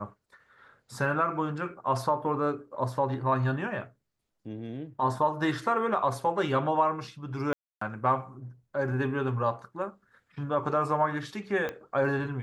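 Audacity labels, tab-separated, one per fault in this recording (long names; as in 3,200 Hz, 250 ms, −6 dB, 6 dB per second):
7.530000	7.810000	drop-out 284 ms
11.690000	11.690000	click −20 dBFS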